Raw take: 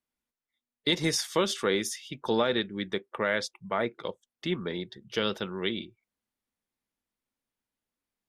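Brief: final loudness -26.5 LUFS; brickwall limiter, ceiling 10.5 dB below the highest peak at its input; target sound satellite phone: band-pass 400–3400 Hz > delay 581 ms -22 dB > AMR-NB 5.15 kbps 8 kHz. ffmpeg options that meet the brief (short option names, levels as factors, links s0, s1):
-af "alimiter=limit=0.0668:level=0:latency=1,highpass=400,lowpass=3400,aecho=1:1:581:0.0794,volume=5.96" -ar 8000 -c:a libopencore_amrnb -b:a 5150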